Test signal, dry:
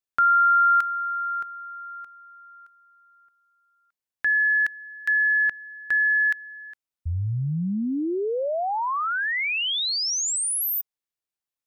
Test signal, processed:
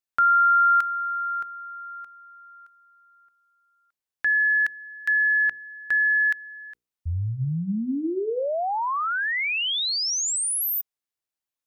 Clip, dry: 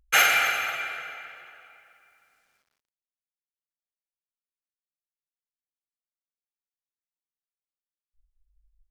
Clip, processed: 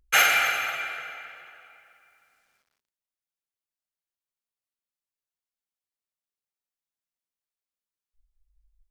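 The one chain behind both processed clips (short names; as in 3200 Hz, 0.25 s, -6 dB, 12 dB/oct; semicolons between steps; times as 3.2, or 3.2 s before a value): notches 60/120/180/240/300/360/420/480 Hz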